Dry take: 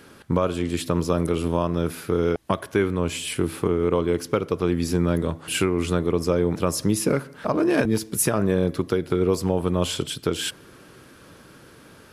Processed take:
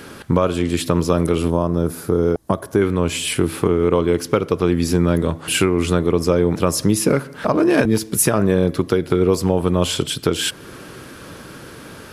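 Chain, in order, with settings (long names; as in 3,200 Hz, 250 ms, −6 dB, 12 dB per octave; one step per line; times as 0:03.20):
0:01.50–0:02.82: parametric band 2,600 Hz −13 dB 1.6 octaves
in parallel at +2.5 dB: downward compressor, threshold −35 dBFS, peak gain reduction 18 dB
on the sum: level +3.5 dB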